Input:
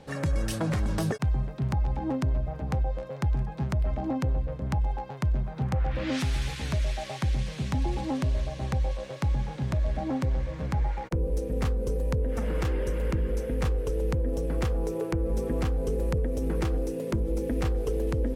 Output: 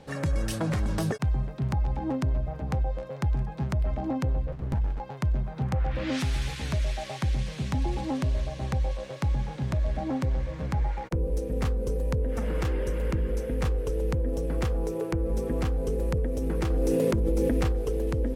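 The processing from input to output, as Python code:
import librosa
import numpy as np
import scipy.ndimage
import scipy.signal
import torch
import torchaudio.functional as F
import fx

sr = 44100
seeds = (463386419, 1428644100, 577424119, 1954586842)

y = fx.running_max(x, sr, window=65, at=(4.52, 5.0))
y = fx.env_flatten(y, sr, amount_pct=100, at=(16.7, 17.72))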